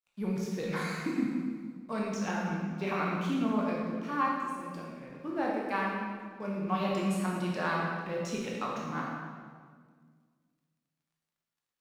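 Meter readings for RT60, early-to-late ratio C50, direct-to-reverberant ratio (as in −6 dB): 1.8 s, 0.0 dB, −3.5 dB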